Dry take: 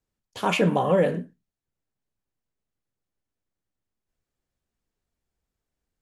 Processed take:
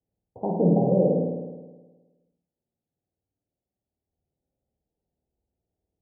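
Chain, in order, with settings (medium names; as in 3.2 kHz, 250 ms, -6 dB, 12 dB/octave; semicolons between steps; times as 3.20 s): high-pass 56 Hz; low-pass that closes with the level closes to 560 Hz, closed at -22 dBFS; steep low-pass 850 Hz 72 dB/octave; on a send: flutter echo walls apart 9 m, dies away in 1.3 s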